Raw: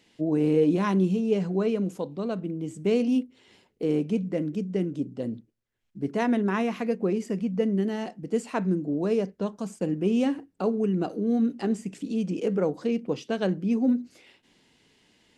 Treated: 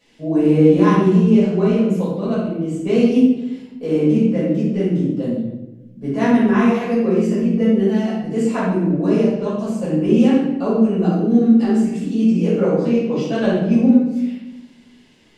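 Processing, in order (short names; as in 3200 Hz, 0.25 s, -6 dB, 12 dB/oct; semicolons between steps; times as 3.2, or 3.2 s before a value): shoebox room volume 400 m³, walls mixed, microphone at 5.7 m; gain -5 dB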